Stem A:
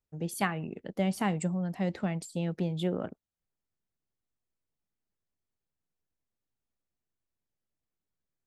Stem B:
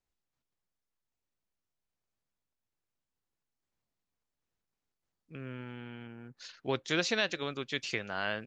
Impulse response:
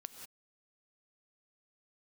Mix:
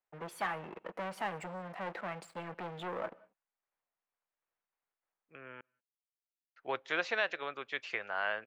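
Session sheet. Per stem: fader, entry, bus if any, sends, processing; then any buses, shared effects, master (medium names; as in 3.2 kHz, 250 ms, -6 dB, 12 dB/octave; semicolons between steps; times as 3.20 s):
-12.5 dB, 0.00 s, send -10.5 dB, comb 6 ms, depth 30%; waveshaping leveller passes 5
+2.0 dB, 0.00 s, muted 5.61–6.56 s, send -22.5 dB, none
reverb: on, pre-delay 3 ms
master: three-band isolator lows -21 dB, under 510 Hz, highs -20 dB, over 2.5 kHz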